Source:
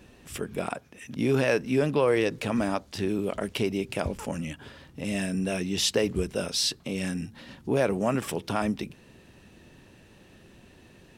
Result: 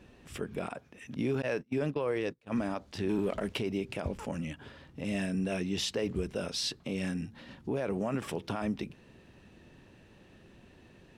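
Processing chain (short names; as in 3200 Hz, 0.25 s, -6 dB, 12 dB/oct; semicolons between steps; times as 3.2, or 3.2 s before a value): LPF 3900 Hz 6 dB/oct; 1.42–2.52 gate -26 dBFS, range -32 dB; limiter -19.5 dBFS, peak gain reduction 8 dB; 3.09–3.59 sample leveller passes 1; gain -3 dB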